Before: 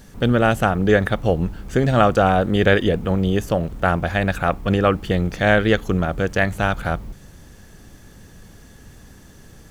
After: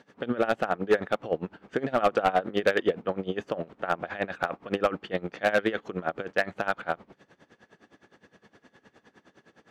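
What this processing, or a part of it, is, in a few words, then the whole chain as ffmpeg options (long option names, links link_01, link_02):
helicopter radio: -af "highpass=320,lowpass=2800,aeval=exprs='val(0)*pow(10,-20*(0.5-0.5*cos(2*PI*9.7*n/s))/20)':channel_layout=same,asoftclip=type=hard:threshold=-14dB"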